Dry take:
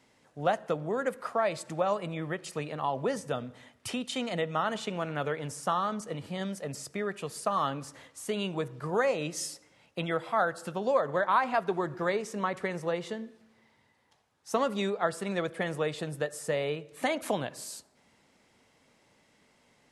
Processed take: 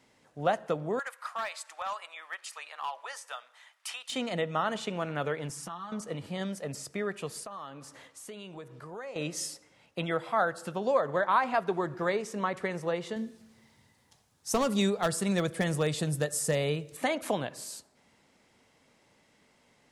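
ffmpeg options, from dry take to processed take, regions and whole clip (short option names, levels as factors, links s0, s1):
-filter_complex "[0:a]asettb=1/sr,asplit=3[s0][s1][s2];[s0]atrim=end=0.994[s3];[s1]atrim=start=0.99:end=4.12,asetpts=PTS-STARTPTS,afade=t=in:d=0.004:c=qsin,afade=t=out:st=3.126:d=0.004:c=qsin,highpass=f=900:w=0.5412,highpass=f=900:w=1.3066,volume=26.6,asoftclip=hard,volume=0.0376[s4];[s2]atrim=start=4.116[s5];[s3][s4]acrossfade=d=0.004:c1=hsin:c2=qsin[s6];[s6][s5]acrossfade=d=0.004:c1=qsin:c2=hsin,asettb=1/sr,asplit=3[s7][s8][s9];[s7]atrim=end=5.494[s10];[s8]atrim=start=5.49:end=5.92,asetpts=PTS-STARTPTS,afade=t=in:d=0.004:c=qsin,afade=t=out:st=0.426:d=0.004:c=qsin,equalizer=f=540:w=3.5:g=-13,acompressor=threshold=0.0126:ratio=16:attack=3.2:release=140:knee=1:detection=peak,aecho=1:1:6:0.64,atrim=end_sample=18963[s11];[s9]atrim=start=5.916[s12];[s10][s11]acrossfade=d=0.004:c1=hsin:c2=qsin[s13];[s13][s12]acrossfade=d=0.004:c1=qsin:c2=hsin,asettb=1/sr,asplit=3[s14][s15][s16];[s14]atrim=end=7.434[s17];[s15]atrim=start=7.43:end=9.16,asetpts=PTS-STARTPTS,afade=t=in:d=0.004:c=qsin,afade=t=out:st=1.726:d=0.004:c=qsin,lowshelf=f=170:g=-6,acompressor=threshold=0.00562:ratio=2.5:attack=3.2:release=140:knee=1:detection=peak[s18];[s16]atrim=start=9.156[s19];[s17][s18]acrossfade=d=0.004:c1=hsin:c2=qsin[s20];[s20][s19]acrossfade=d=0.004:c1=qsin:c2=hsin,asettb=1/sr,asplit=3[s21][s22][s23];[s21]atrim=end=13.164[s24];[s22]atrim=start=13.16:end=16.97,asetpts=PTS-STARTPTS,afade=t=in:d=0.004:c=qsin,afade=t=out:st=3.806:d=0.004:c=qsin,asoftclip=type=hard:threshold=0.0944,bass=f=250:g=9,treble=f=4000:g=11[s25];[s23]atrim=start=16.966[s26];[s24][s25]acrossfade=d=0.004:c1=hsin:c2=qsin[s27];[s27][s26]acrossfade=d=0.004:c1=qsin:c2=hsin"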